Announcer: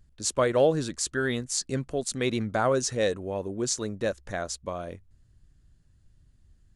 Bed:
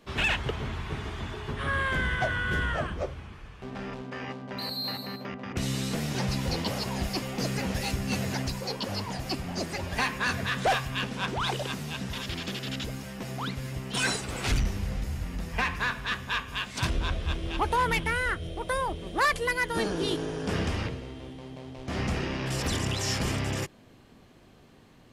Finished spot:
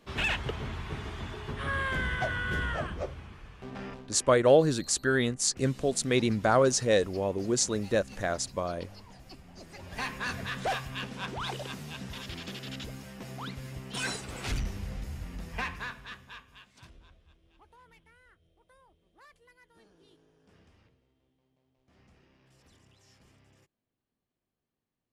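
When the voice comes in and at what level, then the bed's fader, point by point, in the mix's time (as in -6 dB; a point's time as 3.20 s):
3.90 s, +1.5 dB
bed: 3.86 s -3 dB
4.33 s -18 dB
9.57 s -18 dB
10.07 s -6 dB
15.64 s -6 dB
17.34 s -33 dB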